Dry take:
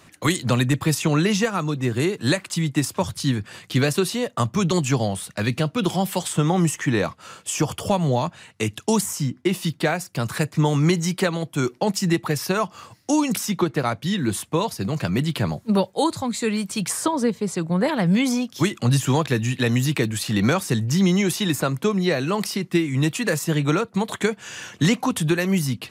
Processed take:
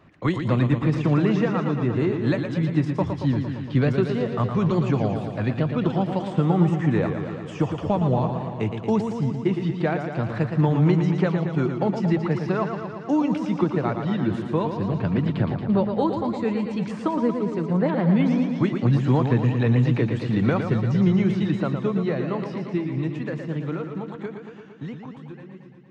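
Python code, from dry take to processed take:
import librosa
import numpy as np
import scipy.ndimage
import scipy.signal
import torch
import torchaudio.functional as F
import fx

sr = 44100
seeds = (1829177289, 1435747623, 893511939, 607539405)

y = fx.fade_out_tail(x, sr, length_s=5.38)
y = fx.spacing_loss(y, sr, db_at_10k=39)
y = fx.echo_warbled(y, sr, ms=115, feedback_pct=72, rate_hz=2.8, cents=83, wet_db=-7.0)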